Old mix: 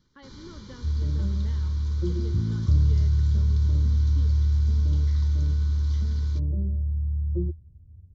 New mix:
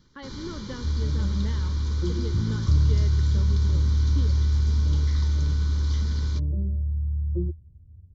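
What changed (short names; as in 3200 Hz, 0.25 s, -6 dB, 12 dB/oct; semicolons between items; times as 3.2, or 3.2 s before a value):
speech +8.5 dB; first sound +7.5 dB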